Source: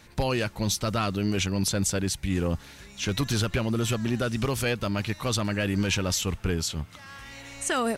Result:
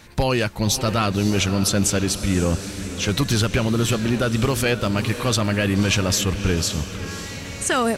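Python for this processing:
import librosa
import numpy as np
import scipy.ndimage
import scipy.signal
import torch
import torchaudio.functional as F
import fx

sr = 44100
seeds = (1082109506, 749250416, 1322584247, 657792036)

y = fx.echo_diffused(x, sr, ms=563, feedback_pct=53, wet_db=-11.0)
y = y * librosa.db_to_amplitude(6.0)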